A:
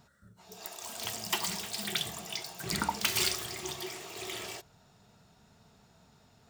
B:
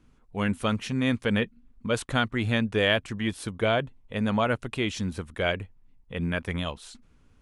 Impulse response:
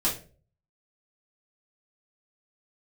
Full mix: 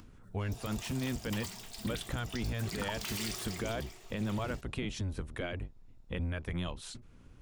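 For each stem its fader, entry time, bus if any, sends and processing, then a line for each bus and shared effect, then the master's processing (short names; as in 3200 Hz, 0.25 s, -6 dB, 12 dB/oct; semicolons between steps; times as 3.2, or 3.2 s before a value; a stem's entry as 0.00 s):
0.74 s -2.5 dB -> 1.16 s -10 dB -> 2.05 s -10 dB -> 2.74 s -3.5 dB -> 3.54 s -3.5 dB -> 3.94 s -12.5 dB, 0.00 s, no send, gate -58 dBFS, range -7 dB
+0.5 dB, 0.00 s, no send, octaver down 1 oct, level +3 dB; compressor 6:1, threshold -33 dBFS, peak gain reduction 15 dB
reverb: off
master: upward compressor, threshold -50 dBFS; limiter -26 dBFS, peak gain reduction 10 dB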